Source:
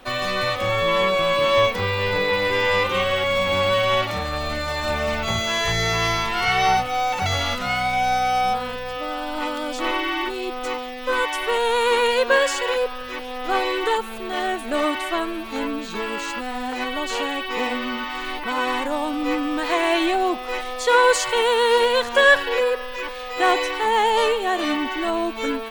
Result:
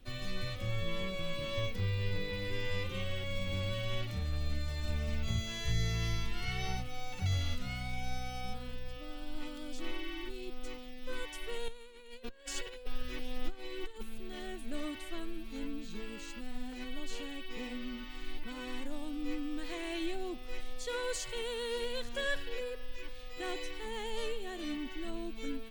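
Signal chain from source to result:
0:11.68–0:14.03: compressor whose output falls as the input rises −26 dBFS, ratio −0.5
guitar amp tone stack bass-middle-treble 10-0-1
level +6 dB

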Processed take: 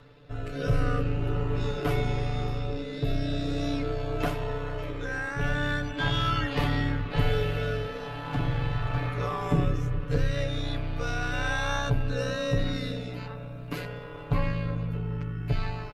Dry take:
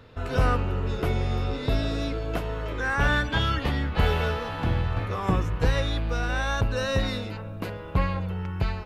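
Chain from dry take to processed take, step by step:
in parallel at −3 dB: brickwall limiter −17 dBFS, peak gain reduction 7.5 dB
on the sum: rotating-speaker cabinet horn 0.75 Hz
far-end echo of a speakerphone 240 ms, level −18 dB
time stretch by overlap-add 1.8×, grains 31 ms
level −3 dB

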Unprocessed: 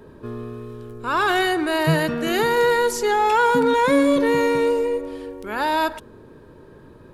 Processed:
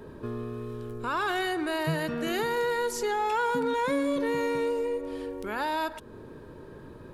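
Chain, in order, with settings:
downward compressor 2 to 1, threshold −33 dBFS, peak gain reduction 11 dB

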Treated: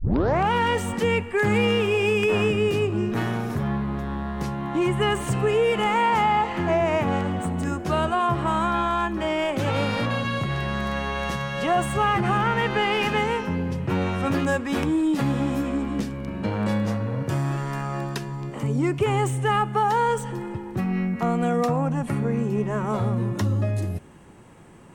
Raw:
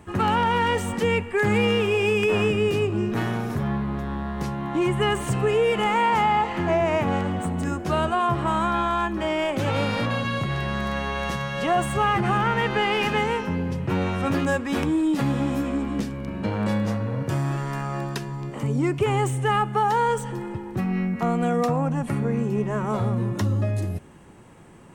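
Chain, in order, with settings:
turntable start at the beginning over 0.51 s

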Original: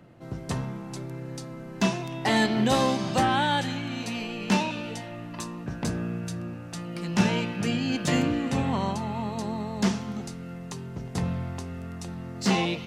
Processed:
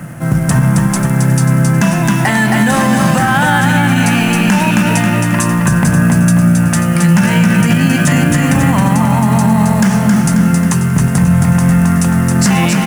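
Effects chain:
downward compressor 3 to 1, threshold −32 dBFS, peak gain reduction 12 dB
single-tap delay 283 ms −17 dB
log-companded quantiser 6 bits
graphic EQ with 15 bands 160 Hz +9 dB, 400 Hz −9 dB, 1,600 Hz +8 dB, 4,000 Hz −10 dB, 10,000 Hz +10 dB
repeating echo 269 ms, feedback 46%, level −5 dB
boost into a limiter +22.5 dB
level −1 dB

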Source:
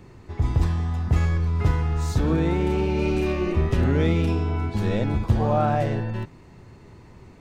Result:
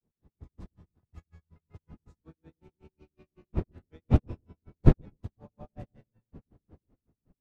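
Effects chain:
wind on the microphone 200 Hz −18 dBFS
granular cloud 135 ms, grains 5.4 per second, pitch spread up and down by 0 semitones
on a send: delay with a low-pass on its return 124 ms, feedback 48%, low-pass 460 Hz, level −14.5 dB
on the sum: expander for the loud parts 2.5 to 1, over −33 dBFS
level −5.5 dB

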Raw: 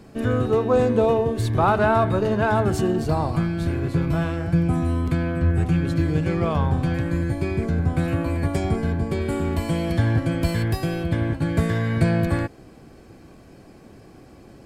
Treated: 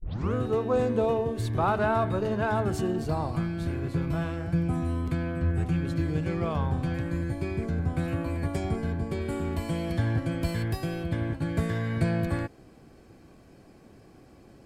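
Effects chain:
turntable start at the beginning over 0.34 s
level −6.5 dB

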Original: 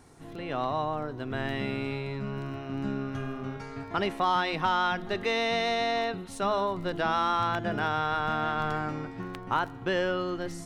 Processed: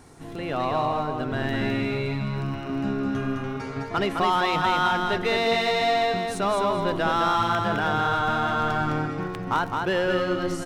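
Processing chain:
in parallel at −3.5 dB: hard clipping −30.5 dBFS, distortion −6 dB
on the sum: repeating echo 210 ms, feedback 24%, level −4 dB
level +1 dB

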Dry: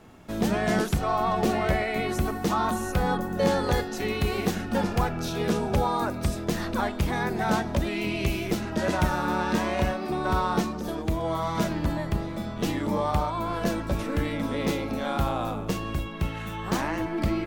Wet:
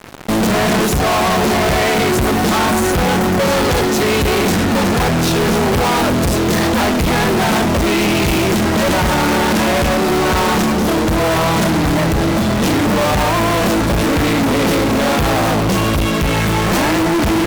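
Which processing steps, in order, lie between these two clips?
high-pass filter 70 Hz 6 dB per octave
in parallel at −5 dB: sample-rate reduction 1,700 Hz
on the sum: fuzz pedal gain 41 dB, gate −44 dBFS

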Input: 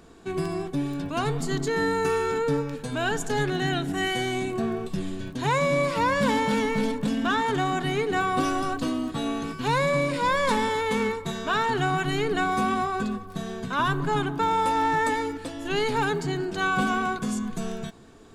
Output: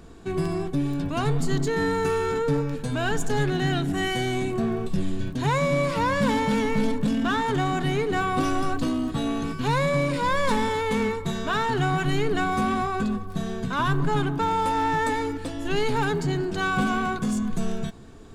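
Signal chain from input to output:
in parallel at −5 dB: hard clipping −28.5 dBFS, distortion −7 dB
on the sum: low-shelf EQ 150 Hz +10 dB
level −3 dB

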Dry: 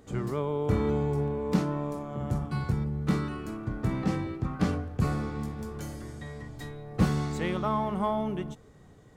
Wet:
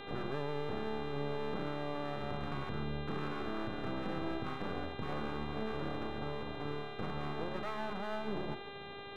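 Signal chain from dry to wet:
Butterworth low-pass 1,400 Hz 96 dB per octave
low-shelf EQ 270 Hz −11 dB
mains-hum notches 60/120/180/240/300/360 Hz
reversed playback
downward compressor, threshold −39 dBFS, peak gain reduction 13 dB
reversed playback
brickwall limiter −40 dBFS, peak gain reduction 9 dB
notch comb filter 1,000 Hz
half-wave rectification
hum with harmonics 400 Hz, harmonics 10, −62 dBFS −3 dB per octave
level +13.5 dB

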